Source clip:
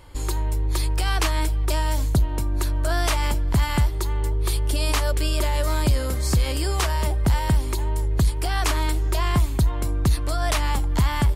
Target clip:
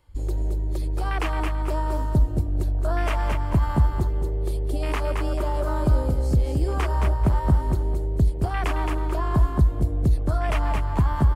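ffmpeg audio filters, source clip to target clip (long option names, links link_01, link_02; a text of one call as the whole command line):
ffmpeg -i in.wav -filter_complex "[0:a]afwtdn=0.0398,asplit=2[link_01][link_02];[link_02]aecho=0:1:219|438|657|876:0.531|0.143|0.0387|0.0104[link_03];[link_01][link_03]amix=inputs=2:normalize=0,acrossover=split=480|3000[link_04][link_05][link_06];[link_05]acompressor=threshold=-27dB:ratio=6[link_07];[link_04][link_07][link_06]amix=inputs=3:normalize=0" out.wav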